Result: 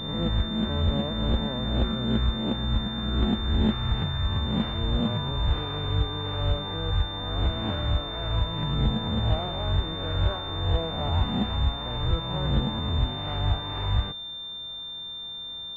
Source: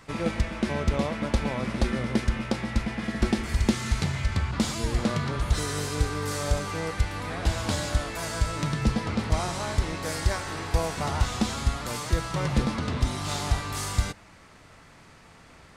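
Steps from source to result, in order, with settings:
peak hold with a rise ahead of every peak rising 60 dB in 0.87 s
formants moved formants −4 semitones
switching amplifier with a slow clock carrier 3,600 Hz
level −3 dB

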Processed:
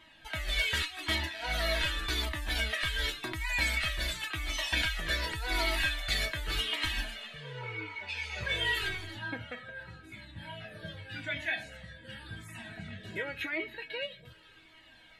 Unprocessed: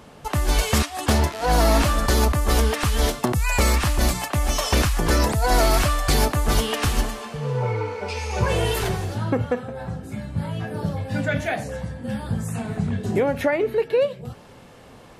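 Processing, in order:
flat-topped bell 2,500 Hz +14.5 dB
tuned comb filter 320 Hz, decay 0.19 s, harmonics all, mix 90%
flanger whose copies keep moving one way falling 0.88 Hz

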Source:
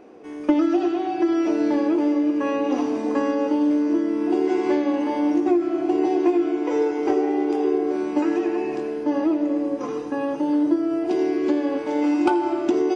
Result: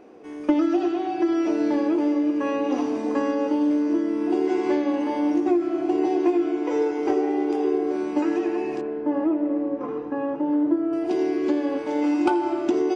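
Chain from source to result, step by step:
0:08.81–0:10.93: low-pass filter 1,800 Hz 12 dB per octave
level −1.5 dB

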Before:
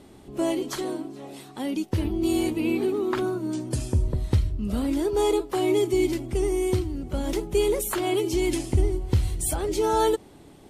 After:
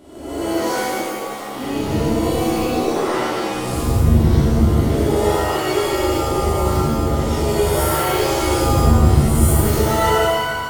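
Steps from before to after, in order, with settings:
peak hold with a rise ahead of every peak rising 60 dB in 1.12 s
reverb with rising layers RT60 1.4 s, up +7 semitones, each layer −2 dB, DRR −7 dB
level −6.5 dB

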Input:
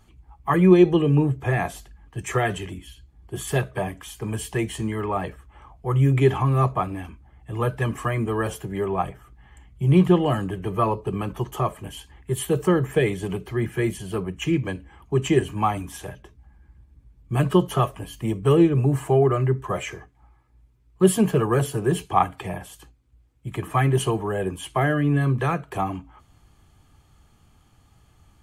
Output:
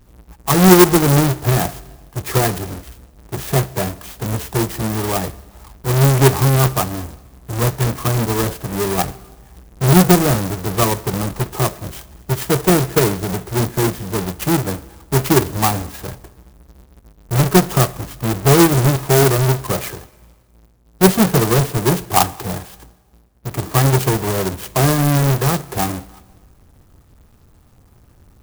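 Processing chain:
each half-wave held at its own peak
four-comb reverb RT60 1.4 s, combs from 26 ms, DRR 18.5 dB
converter with an unsteady clock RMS 0.087 ms
level +2 dB

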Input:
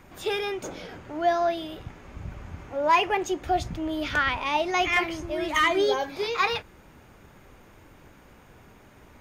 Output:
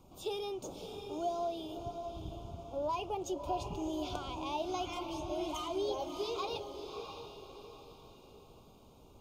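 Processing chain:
downward compressor 3 to 1, threshold −25 dBFS, peak gain reduction 7.5 dB
Butterworth band-reject 1,800 Hz, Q 0.92
feedback delay with all-pass diffusion 636 ms, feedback 42%, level −7 dB
level −7.5 dB

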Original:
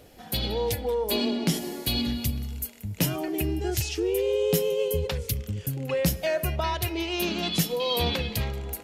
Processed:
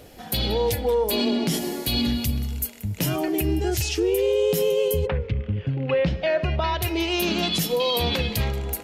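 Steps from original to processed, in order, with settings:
0:05.05–0:06.81: low-pass filter 2,200 Hz → 5,000 Hz 24 dB per octave
brickwall limiter −19.5 dBFS, peak gain reduction 9 dB
level +5.5 dB

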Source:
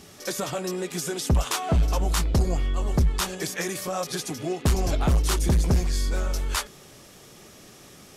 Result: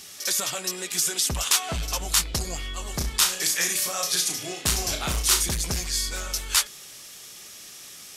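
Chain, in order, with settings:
tilt shelving filter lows −10 dB, about 1,300 Hz
0:02.96–0:05.43: flutter between parallel walls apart 5.9 metres, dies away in 0.32 s

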